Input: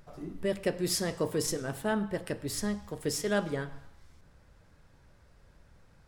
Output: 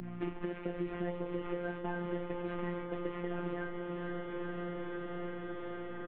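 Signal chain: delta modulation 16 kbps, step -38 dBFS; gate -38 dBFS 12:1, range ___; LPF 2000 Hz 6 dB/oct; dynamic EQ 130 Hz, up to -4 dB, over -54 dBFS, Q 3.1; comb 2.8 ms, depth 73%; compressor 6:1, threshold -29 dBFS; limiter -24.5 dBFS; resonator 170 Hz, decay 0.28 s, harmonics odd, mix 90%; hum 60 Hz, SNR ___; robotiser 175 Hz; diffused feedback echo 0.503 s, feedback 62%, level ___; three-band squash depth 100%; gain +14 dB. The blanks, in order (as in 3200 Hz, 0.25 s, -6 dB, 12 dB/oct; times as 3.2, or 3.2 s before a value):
-33 dB, 23 dB, -9 dB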